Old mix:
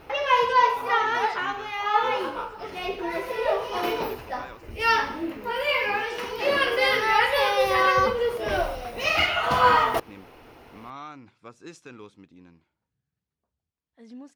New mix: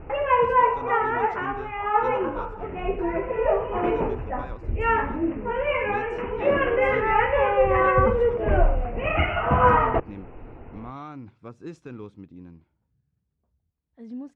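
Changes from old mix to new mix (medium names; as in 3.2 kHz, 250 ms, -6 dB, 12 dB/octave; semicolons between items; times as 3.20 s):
background: add steep low-pass 2.8 kHz 72 dB/octave; master: add tilt EQ -3.5 dB/octave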